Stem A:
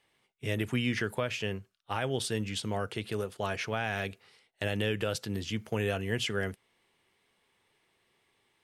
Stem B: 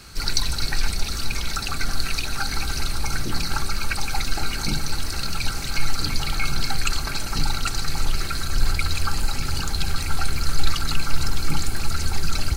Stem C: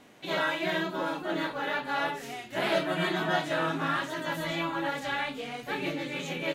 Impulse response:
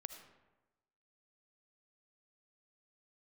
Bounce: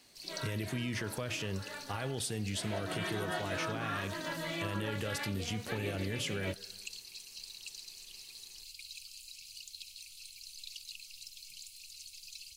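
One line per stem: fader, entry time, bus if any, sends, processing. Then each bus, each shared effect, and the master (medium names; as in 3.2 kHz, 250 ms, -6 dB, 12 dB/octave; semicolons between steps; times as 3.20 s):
-1.5 dB, 0.00 s, bus A, send -7.5 dB, treble shelf 5.6 kHz +11 dB
-16.0 dB, 0.00 s, bus A, no send, elliptic high-pass 2.6 kHz, stop band 40 dB
2.56 s -13.5 dB -> 2.96 s -3.5 dB, 0.00 s, no bus, no send, band-stop 820 Hz, Q 12; de-hum 45.19 Hz, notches 38
bus A: 0.0 dB, bass shelf 320 Hz +9 dB; peak limiter -25.5 dBFS, peak gain reduction 11 dB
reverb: on, RT60 1.1 s, pre-delay 35 ms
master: compression 2:1, threshold -36 dBFS, peak gain reduction 5.5 dB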